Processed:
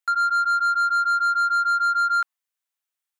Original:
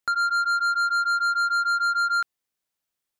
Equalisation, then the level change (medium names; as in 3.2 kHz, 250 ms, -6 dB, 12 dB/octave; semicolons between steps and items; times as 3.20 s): high-pass 870 Hz; peaking EQ 4.8 kHz -3.5 dB 0.54 oct; dynamic bell 1.1 kHz, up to +7 dB, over -38 dBFS, Q 1.3; -2.0 dB